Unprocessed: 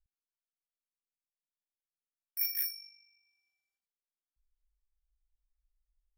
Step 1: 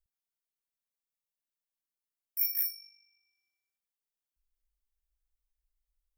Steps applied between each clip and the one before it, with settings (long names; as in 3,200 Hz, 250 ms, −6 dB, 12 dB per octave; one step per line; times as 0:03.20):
high-shelf EQ 10,000 Hz +8.5 dB
level −3.5 dB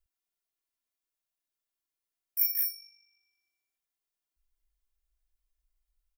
comb filter 2.9 ms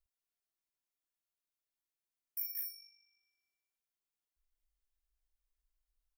downward compressor 6 to 1, threshold −31 dBFS, peak gain reduction 9 dB
level −5.5 dB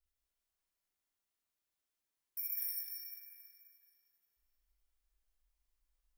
dense smooth reverb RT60 3.1 s, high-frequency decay 0.7×, DRR −5.5 dB
level −3 dB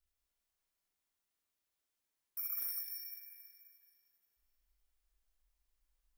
soft clipping −31.5 dBFS, distortion −21 dB
level +1 dB